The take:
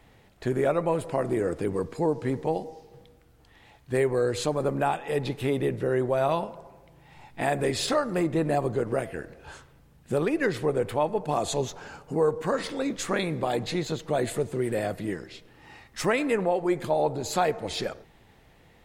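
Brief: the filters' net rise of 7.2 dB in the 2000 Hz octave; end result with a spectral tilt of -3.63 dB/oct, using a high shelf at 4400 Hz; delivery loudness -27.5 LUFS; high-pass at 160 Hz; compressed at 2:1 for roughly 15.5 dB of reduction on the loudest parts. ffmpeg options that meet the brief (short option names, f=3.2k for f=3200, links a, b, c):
-af "highpass=160,equalizer=f=2k:t=o:g=7.5,highshelf=f=4.4k:g=6.5,acompressor=threshold=-48dB:ratio=2,volume=13dB"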